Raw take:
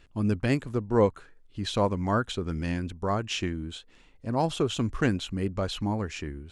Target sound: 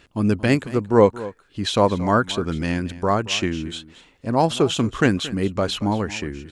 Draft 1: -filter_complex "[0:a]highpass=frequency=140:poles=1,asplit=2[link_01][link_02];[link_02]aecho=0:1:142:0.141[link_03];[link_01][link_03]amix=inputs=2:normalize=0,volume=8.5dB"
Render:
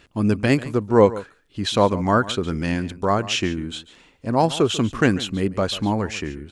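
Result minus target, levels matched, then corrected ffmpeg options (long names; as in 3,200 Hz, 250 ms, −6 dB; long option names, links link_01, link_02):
echo 85 ms early
-filter_complex "[0:a]highpass=frequency=140:poles=1,asplit=2[link_01][link_02];[link_02]aecho=0:1:227:0.141[link_03];[link_01][link_03]amix=inputs=2:normalize=0,volume=8.5dB"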